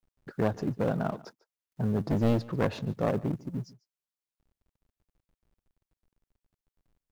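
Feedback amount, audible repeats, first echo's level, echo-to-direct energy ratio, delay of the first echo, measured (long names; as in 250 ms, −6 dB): repeats not evenly spaced, 1, −21.5 dB, −21.5 dB, 146 ms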